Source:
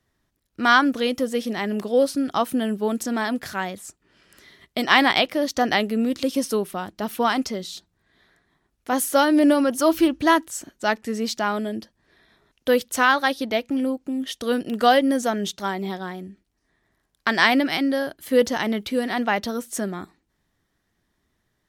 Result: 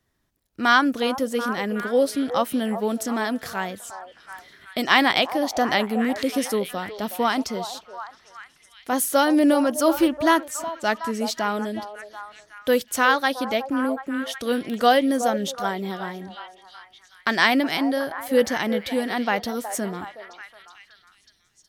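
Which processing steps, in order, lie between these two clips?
treble shelf 11 kHz +5 dB; on a send: repeats whose band climbs or falls 368 ms, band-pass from 670 Hz, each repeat 0.7 oct, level -7.5 dB; on the sum: trim -1 dB

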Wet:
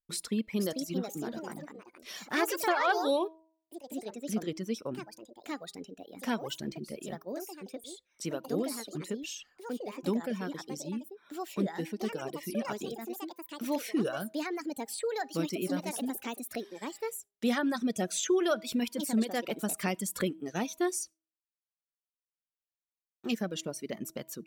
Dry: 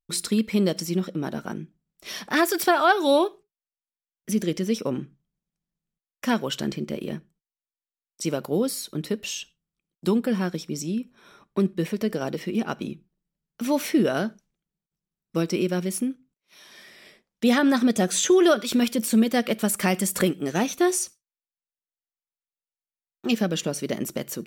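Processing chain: reverb removal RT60 1.4 s; de-hum 321.2 Hz, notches 3; ever faster or slower copies 510 ms, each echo +4 st, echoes 2, each echo -6 dB; trim -8.5 dB

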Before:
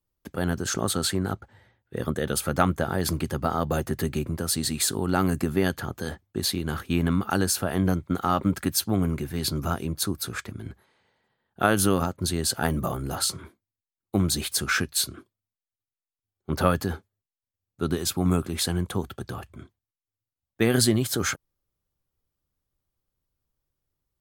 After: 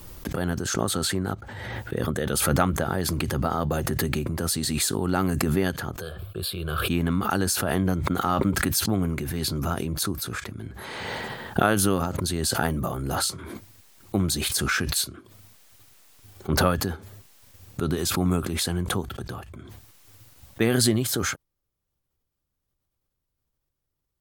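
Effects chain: 6.01–6.88 s: static phaser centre 1.3 kHz, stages 8; swell ahead of each attack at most 24 dB/s; trim -1 dB

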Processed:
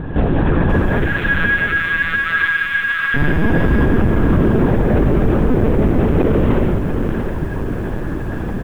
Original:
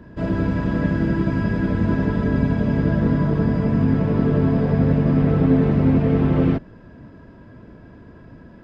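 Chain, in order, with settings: 0.89–3.16 s: steep high-pass 1.4 kHz 36 dB/octave; compression 3:1, threshold -31 dBFS, peak gain reduction 14.5 dB; multi-tap echo 40/105/138/163/201/592 ms -17/-18.5/-3.5/-8/-4/-9.5 dB; LPC vocoder at 8 kHz pitch kept; loudness maximiser +22.5 dB; bit-crushed delay 693 ms, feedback 35%, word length 6-bit, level -9 dB; trim -5 dB

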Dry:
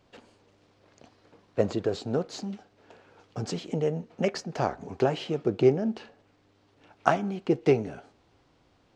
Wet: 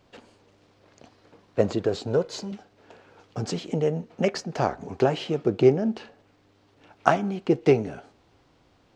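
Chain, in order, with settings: 2.07–2.52 s: comb 2 ms, depth 53%; trim +3 dB

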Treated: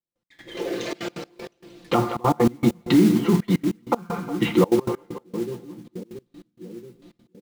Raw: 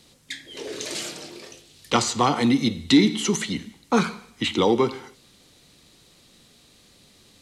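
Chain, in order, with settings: comb 5.8 ms, depth 82%; gate with hold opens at -41 dBFS; in parallel at -4 dB: bit crusher 6-bit; on the sum: low-pass that closes with the level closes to 1.3 kHz, closed at -12.5 dBFS; treble shelf 2.4 kHz -12 dB; hum notches 50/100/150/200 Hz; on a send: two-band feedback delay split 410 Hz, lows 678 ms, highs 179 ms, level -15 dB; on the sum: peak limiter -11 dBFS, peak gain reduction 10 dB; modulation noise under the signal 16 dB; treble shelf 6.2 kHz -10 dB; feedback comb 60 Hz, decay 0.18 s, harmonics all; trance gate "..x..xxxxxxx.x.x" 194 bpm -24 dB; trim +5.5 dB

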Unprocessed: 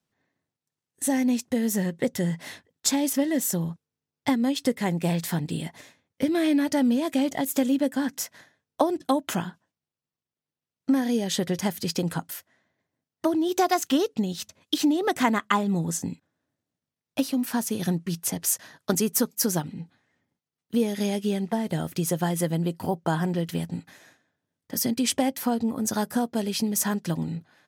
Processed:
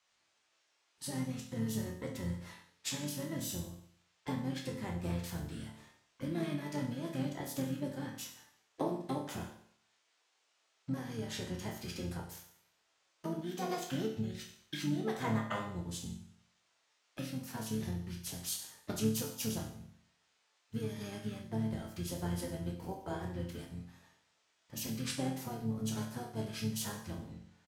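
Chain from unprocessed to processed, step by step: band noise 610–7300 Hz -63 dBFS; chord resonator D2 minor, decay 0.61 s; harmony voices -12 st -3 dB, -7 st -9 dB

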